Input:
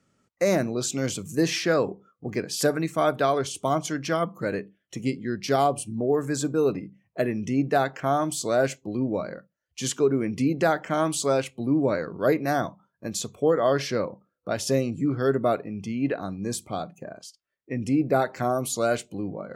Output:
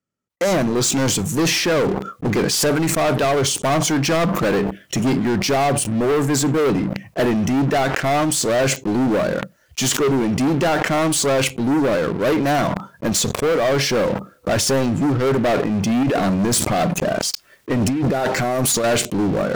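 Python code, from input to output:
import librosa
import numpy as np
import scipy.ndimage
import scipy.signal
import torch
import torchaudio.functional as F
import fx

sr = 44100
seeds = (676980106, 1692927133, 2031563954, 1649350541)

y = fx.over_compress(x, sr, threshold_db=-31.0, ratio=-1.0, at=(16.03, 18.84))
y = fx.rider(y, sr, range_db=4, speed_s=0.5)
y = fx.leveller(y, sr, passes=5)
y = fx.sustainer(y, sr, db_per_s=35.0)
y = y * 10.0 ** (-4.5 / 20.0)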